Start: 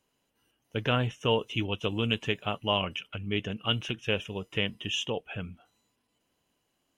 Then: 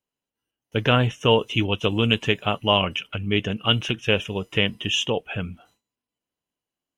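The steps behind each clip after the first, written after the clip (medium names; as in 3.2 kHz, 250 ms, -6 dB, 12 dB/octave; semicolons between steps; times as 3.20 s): gate with hold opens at -51 dBFS; trim +8 dB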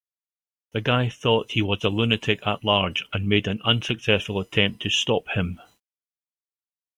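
bit crusher 12-bit; gain riding 0.5 s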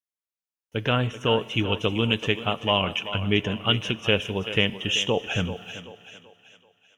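thinning echo 384 ms, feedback 45%, high-pass 300 Hz, level -11 dB; reverberation RT60 2.4 s, pre-delay 28 ms, DRR 18.5 dB; trim -2 dB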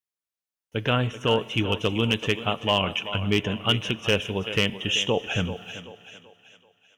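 hard clipper -10.5 dBFS, distortion -21 dB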